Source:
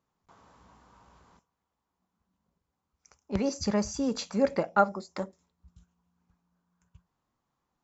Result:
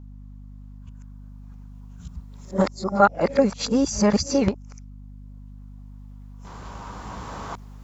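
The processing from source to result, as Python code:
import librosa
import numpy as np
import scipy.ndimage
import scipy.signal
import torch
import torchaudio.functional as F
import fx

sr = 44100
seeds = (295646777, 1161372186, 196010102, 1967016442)

y = x[::-1].copy()
y = fx.recorder_agc(y, sr, target_db=-16.5, rise_db_per_s=5.8, max_gain_db=30)
y = fx.add_hum(y, sr, base_hz=50, snr_db=15)
y = y * 10.0 ** (6.5 / 20.0)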